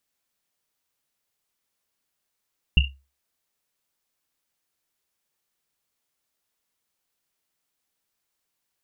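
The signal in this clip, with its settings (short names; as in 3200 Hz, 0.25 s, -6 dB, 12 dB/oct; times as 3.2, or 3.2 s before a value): Risset drum, pitch 68 Hz, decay 0.30 s, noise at 2800 Hz, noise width 150 Hz, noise 60%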